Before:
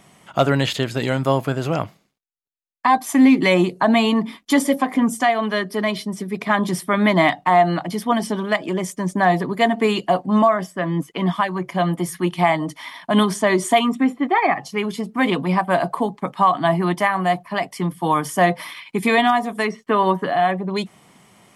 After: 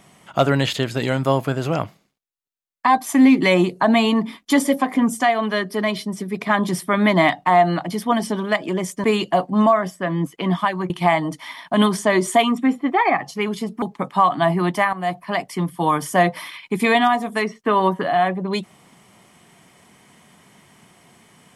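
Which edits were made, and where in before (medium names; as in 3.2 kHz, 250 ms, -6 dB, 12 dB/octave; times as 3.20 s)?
9.04–9.80 s: delete
11.66–12.27 s: delete
15.19–16.05 s: delete
17.16–17.44 s: fade in, from -12.5 dB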